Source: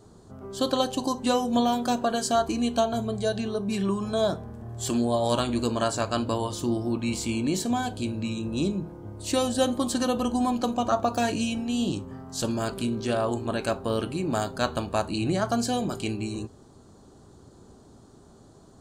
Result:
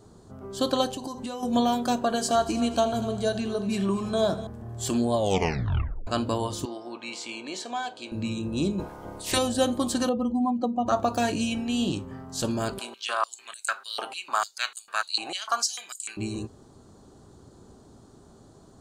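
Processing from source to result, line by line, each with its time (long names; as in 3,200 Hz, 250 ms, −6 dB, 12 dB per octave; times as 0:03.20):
0:00.88–0:01.43: downward compressor 10 to 1, threshold −30 dBFS
0:02.04–0:04.47: echo machine with several playback heads 81 ms, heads first and third, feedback 52%, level −16 dB
0:05.16: tape stop 0.91 s
0:06.65–0:08.12: band-pass filter 600–5,400 Hz
0:08.78–0:09.37: ceiling on every frequency bin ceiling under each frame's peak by 21 dB
0:10.09–0:10.88: expanding power law on the bin magnitudes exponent 1.7
0:11.51–0:12.26: parametric band 2,200 Hz +5 dB 1.2 octaves
0:12.79–0:16.17: high-pass on a step sequencer 6.7 Hz 800–7,700 Hz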